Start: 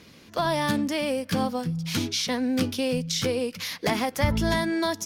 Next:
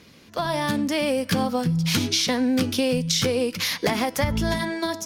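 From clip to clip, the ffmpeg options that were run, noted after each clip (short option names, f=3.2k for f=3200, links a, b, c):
-af "dynaudnorm=f=200:g=11:m=11.5dB,bandreject=f=327.2:t=h:w=4,bandreject=f=654.4:t=h:w=4,bandreject=f=981.6:t=h:w=4,bandreject=f=1.3088k:t=h:w=4,bandreject=f=1.636k:t=h:w=4,bandreject=f=1.9632k:t=h:w=4,bandreject=f=2.2904k:t=h:w=4,bandreject=f=2.6176k:t=h:w=4,bandreject=f=2.9448k:t=h:w=4,bandreject=f=3.272k:t=h:w=4,bandreject=f=3.5992k:t=h:w=4,bandreject=f=3.9264k:t=h:w=4,bandreject=f=4.2536k:t=h:w=4,bandreject=f=4.5808k:t=h:w=4,bandreject=f=4.908k:t=h:w=4,bandreject=f=5.2352k:t=h:w=4,bandreject=f=5.5624k:t=h:w=4,bandreject=f=5.8896k:t=h:w=4,bandreject=f=6.2168k:t=h:w=4,bandreject=f=6.544k:t=h:w=4,bandreject=f=6.8712k:t=h:w=4,bandreject=f=7.1984k:t=h:w=4,bandreject=f=7.5256k:t=h:w=4,bandreject=f=7.8528k:t=h:w=4,bandreject=f=8.18k:t=h:w=4,bandreject=f=8.5072k:t=h:w=4,bandreject=f=8.8344k:t=h:w=4,bandreject=f=9.1616k:t=h:w=4,bandreject=f=9.4888k:t=h:w=4,bandreject=f=9.816k:t=h:w=4,acompressor=threshold=-19dB:ratio=6"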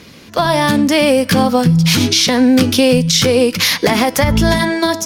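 -af "alimiter=level_in=12.5dB:limit=-1dB:release=50:level=0:latency=1,volume=-1dB"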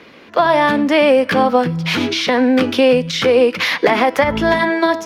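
-filter_complex "[0:a]acrossover=split=280 3100:gain=0.158 1 0.1[a][b][c];[a][b][c]amix=inputs=3:normalize=0,volume=2dB"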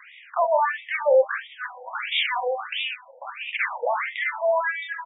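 -af "alimiter=limit=-11dB:level=0:latency=1:release=35,aecho=1:1:44|63:0.355|0.282,afftfilt=real='re*between(b*sr/1024,660*pow(2700/660,0.5+0.5*sin(2*PI*1.5*pts/sr))/1.41,660*pow(2700/660,0.5+0.5*sin(2*PI*1.5*pts/sr))*1.41)':imag='im*between(b*sr/1024,660*pow(2700/660,0.5+0.5*sin(2*PI*1.5*pts/sr))/1.41,660*pow(2700/660,0.5+0.5*sin(2*PI*1.5*pts/sr))*1.41)':win_size=1024:overlap=0.75"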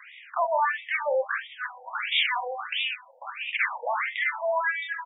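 -af "highpass=830"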